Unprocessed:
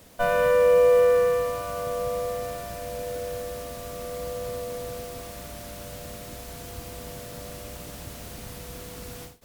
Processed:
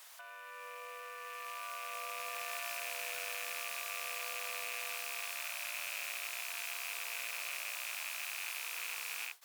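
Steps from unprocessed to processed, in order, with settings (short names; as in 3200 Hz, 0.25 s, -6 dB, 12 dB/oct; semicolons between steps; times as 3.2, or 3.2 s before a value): rattling part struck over -47 dBFS, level -27 dBFS; HPF 940 Hz 24 dB/oct; negative-ratio compressor -40 dBFS, ratio -1; soft clip -27.5 dBFS, distortion -18 dB; gain -1.5 dB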